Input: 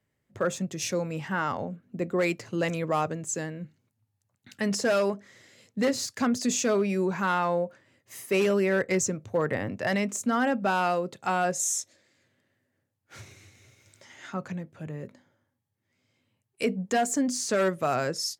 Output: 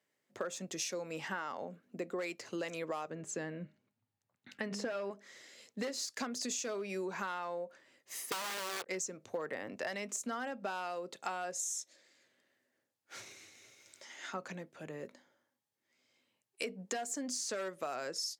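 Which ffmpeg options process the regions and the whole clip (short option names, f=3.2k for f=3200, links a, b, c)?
-filter_complex "[0:a]asettb=1/sr,asplit=3[a][b][c];[a]atrim=end=3.104[d];[b]atrim=start=3.1:end=5.11,asetpts=PTS-STARTPTS,afade=t=in:d=0.004:c=qsin,afade=t=out:st=2.006:d=0.004:c=qsin,bass=f=250:g=8,treble=f=4k:g=-13,bandreject=f=204.8:t=h:w=4,bandreject=f=409.6:t=h:w=4,bandreject=f=614.4:t=h:w=4,bandreject=f=819.2:t=h:w=4,bandreject=f=1.024k:t=h:w=4,bandreject=f=1.2288k:t=h:w=4,bandreject=f=1.4336k:t=h:w=4,bandreject=f=1.6384k:t=h:w=4,bandreject=f=1.8432k:t=h:w=4,bandreject=f=2.048k:t=h:w=4,bandreject=f=2.2528k:t=h:w=4,bandreject=f=2.4576k:t=h:w=4,bandreject=f=2.6624k:t=h:w=4,bandreject=f=2.8672k:t=h:w=4[e];[c]atrim=start=5.106[f];[d][e]acrossfade=d=0.004:c1=hsin:c2=qsin[g];[g][f]acrossfade=d=0.004:c1=qsin:c2=hsin,asettb=1/sr,asplit=3[h][i][j];[h]atrim=end=8.314[k];[i]atrim=start=8.31:end=8.86,asetpts=PTS-STARTPTS,afade=t=in:d=0.004:c=qsin,afade=t=out:st=0.546:d=0.004:c=qsin,lowpass=f=1.2k:w=0.5412,lowpass=f=1.2k:w=1.3066,aeval=exprs='(mod(11.9*val(0)+1,2)-1)/11.9':c=same,acrusher=bits=5:mix=0:aa=0.5[l];[j]atrim=start=8.856[m];[k][l]acrossfade=d=0.004:c1=hsin:c2=qsin[n];[n][m]acrossfade=d=0.004:c1=qsin:c2=hsin,highpass=320,equalizer=f=5.1k:t=o:w=1.6:g=4,acompressor=threshold=-33dB:ratio=12,volume=-2dB"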